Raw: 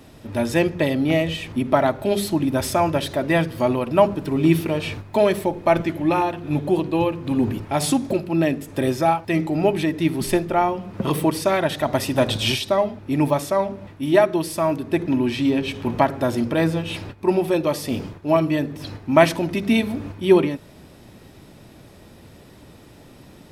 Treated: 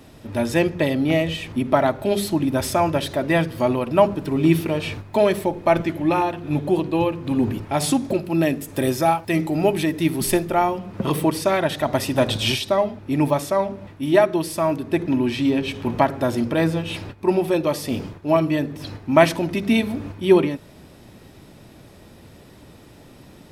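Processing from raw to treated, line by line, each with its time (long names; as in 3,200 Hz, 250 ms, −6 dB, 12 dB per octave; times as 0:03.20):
0:08.24–0:10.79: high-shelf EQ 7,500 Hz +10 dB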